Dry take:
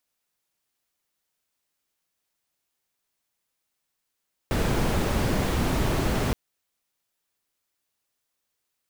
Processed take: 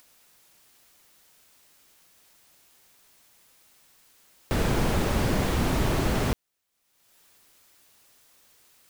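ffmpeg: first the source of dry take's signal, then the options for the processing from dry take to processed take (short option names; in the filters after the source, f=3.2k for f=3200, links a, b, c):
-f lavfi -i "anoisesrc=c=brown:a=0.313:d=1.82:r=44100:seed=1"
-af "acompressor=mode=upward:threshold=-42dB:ratio=2.5"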